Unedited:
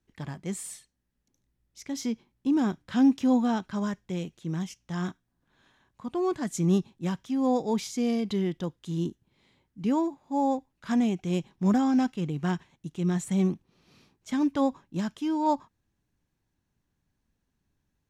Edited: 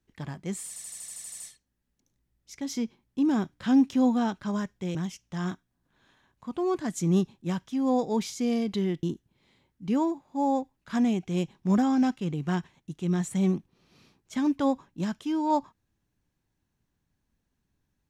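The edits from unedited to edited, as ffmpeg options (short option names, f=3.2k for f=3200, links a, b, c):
-filter_complex "[0:a]asplit=12[a][b][c][d][e][f][g][h][i][j][k][l];[a]atrim=end=0.762[m];[b]atrim=start=0.678:end=0.762[n];[c]atrim=start=0.678:end=0.762[o];[d]atrim=start=0.678:end=0.762[p];[e]atrim=start=0.678:end=0.762[q];[f]atrim=start=0.678:end=0.762[r];[g]atrim=start=0.678:end=0.762[s];[h]atrim=start=0.678:end=0.762[t];[i]atrim=start=0.678:end=0.762[u];[j]atrim=start=0.678:end=4.232[v];[k]atrim=start=4.518:end=8.602[w];[l]atrim=start=8.988[x];[m][n]acrossfade=d=0.004:c1=hsin:c2=hsin[y];[y][o]acrossfade=d=0.004:c1=hsin:c2=hsin[z];[z][p]acrossfade=d=0.004:c1=hsin:c2=hsin[aa];[aa][q]acrossfade=d=0.004:c1=hsin:c2=hsin[ab];[ab][r]acrossfade=d=0.004:c1=hsin:c2=hsin[ac];[ac][s]acrossfade=d=0.004:c1=hsin:c2=hsin[ad];[ad][t]acrossfade=d=0.004:c1=hsin:c2=hsin[ae];[ae][u]acrossfade=d=0.004:c1=hsin:c2=hsin[af];[af][v]acrossfade=d=0.004:c1=hsin:c2=hsin[ag];[ag][w]acrossfade=d=0.004:c1=hsin:c2=hsin[ah];[ah][x]acrossfade=d=0.004:c1=hsin:c2=hsin"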